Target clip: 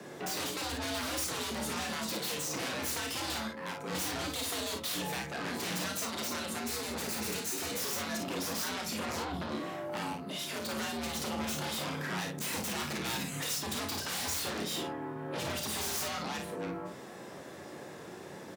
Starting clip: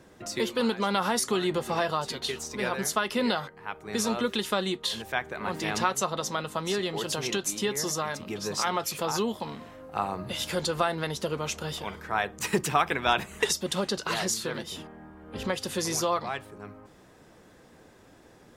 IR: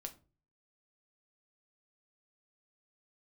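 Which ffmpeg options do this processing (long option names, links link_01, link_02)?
-filter_complex "[0:a]asettb=1/sr,asplit=3[link_01][link_02][link_03];[link_01]atrim=end=8.854[link_04];[link_02]atrim=start=8.85:end=9.5,asetpts=PTS-STARTPTS,afade=type=in:duration=0.004:curve=qsin,afade=type=out:start_time=0.646:duration=0.004:curve=qsin,bass=frequency=250:gain=9,treble=frequency=4000:gain=-14[link_05];[link_03]atrim=start=9.496[link_06];[link_04][link_05]acrossfade=duration=0.004:curve1=hsin:curve2=qsin[link_07];[link_07][link_06]acrossfade=duration=0.004:curve1=qsin:curve2=hsin,asettb=1/sr,asplit=3[link_08][link_09][link_10];[link_08]atrim=end=10.124[link_11];[link_09]atrim=start=10.12:end=10.71,asetpts=PTS-STARTPTS,afade=type=in:duration=0.004:curve=qsin,afade=type=out:start_time=0.586:duration=0.004:curve=qsin,aeval=exprs='0.178*(cos(1*acos(clip(val(0)/0.178,-1,1)))-cos(1*PI/2))+0.0794*(cos(3*acos(clip(val(0)/0.178,-1,1)))-cos(3*PI/2))':channel_layout=same[link_12];[link_10]atrim=start=10.706[link_13];[link_11][link_12]acrossfade=duration=0.004:curve1=hsin:curve2=qsin[link_14];[link_14][link_13]acrossfade=duration=0.004:curve1=qsin:curve2=hsin,acrossover=split=170|3000[link_15][link_16][link_17];[link_16]acompressor=threshold=-36dB:ratio=6[link_18];[link_15][link_18][link_17]amix=inputs=3:normalize=0,asoftclip=type=tanh:threshold=-30.5dB,aeval=exprs='0.0944*(cos(1*acos(clip(val(0)/0.0944,-1,1)))-cos(1*PI/2))+0.0237*(cos(7*acos(clip(val(0)/0.0944,-1,1)))-cos(7*PI/2))':channel_layout=same,asettb=1/sr,asplit=3[link_19][link_20][link_21];[link_19]atrim=end=6.584[link_22];[link_20]atrim=start=6.58:end=7.7,asetpts=PTS-STARTPTS,afade=type=in:duration=0.004:curve=qsin,afade=type=out:start_time=1.116:duration=0.004:curve=qsin,equalizer=frequency=500:width_type=o:width=0.33:gain=-6,equalizer=frequency=1000:width_type=o:width=0.33:gain=-4,equalizer=frequency=3150:width_type=o:width=0.33:gain=-6[link_23];[link_21]atrim=start=7.696[link_24];[link_22][link_23]acrossfade=duration=0.004:curve1=hsin:curve2=qsin[link_25];[link_25][link_24]acrossfade=duration=0.004:curve1=qsin:curve2=hsin,afreqshift=72,aecho=1:1:33|55:0.473|0.501,asplit=2[link_26][link_27];[1:a]atrim=start_sample=2205[link_28];[link_27][link_28]afir=irnorm=-1:irlink=0,volume=3.5dB[link_29];[link_26][link_29]amix=inputs=2:normalize=0,volume=4dB"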